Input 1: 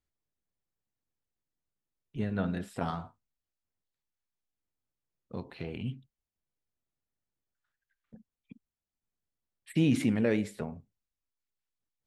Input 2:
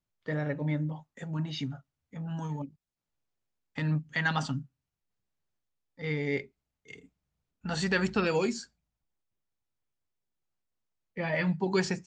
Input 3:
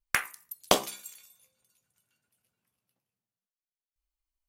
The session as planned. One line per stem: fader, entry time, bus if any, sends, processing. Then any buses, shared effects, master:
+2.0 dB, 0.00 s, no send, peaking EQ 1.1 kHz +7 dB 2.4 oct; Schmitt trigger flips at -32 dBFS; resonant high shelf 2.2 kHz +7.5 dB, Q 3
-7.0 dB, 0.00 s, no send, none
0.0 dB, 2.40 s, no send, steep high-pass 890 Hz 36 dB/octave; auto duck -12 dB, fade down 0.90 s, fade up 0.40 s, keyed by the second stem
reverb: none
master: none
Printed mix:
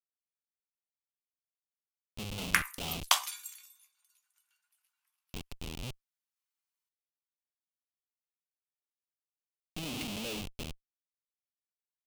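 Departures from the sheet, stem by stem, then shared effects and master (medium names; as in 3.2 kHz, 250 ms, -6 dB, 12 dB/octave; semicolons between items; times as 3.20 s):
stem 1 +2.0 dB -> -4.0 dB; stem 2: muted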